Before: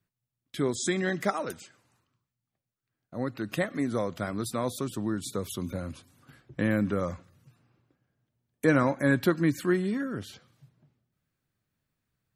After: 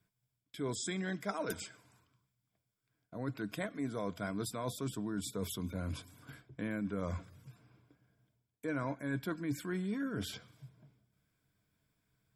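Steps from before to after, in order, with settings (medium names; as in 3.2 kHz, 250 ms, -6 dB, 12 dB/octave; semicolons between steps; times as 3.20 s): rippled EQ curve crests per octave 1.7, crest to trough 8 dB; reverse; compression 6:1, threshold -37 dBFS, peak gain reduction 19 dB; reverse; trim +2 dB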